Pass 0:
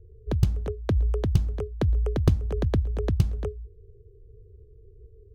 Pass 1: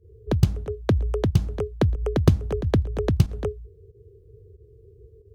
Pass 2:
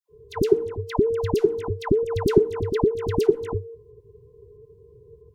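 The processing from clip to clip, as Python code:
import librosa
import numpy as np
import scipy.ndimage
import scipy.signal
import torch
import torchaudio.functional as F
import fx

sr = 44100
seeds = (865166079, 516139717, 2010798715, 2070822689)

y1 = scipy.signal.sosfilt(scipy.signal.butter(2, 84.0, 'highpass', fs=sr, output='sos'), x)
y1 = fx.volume_shaper(y1, sr, bpm=92, per_beat=1, depth_db=-14, release_ms=96.0, shape='fast start')
y1 = y1 * 10.0 ** (5.5 / 20.0)
y2 = fx.band_invert(y1, sr, width_hz=500)
y2 = fx.dispersion(y2, sr, late='lows', ms=97.0, hz=1200.0)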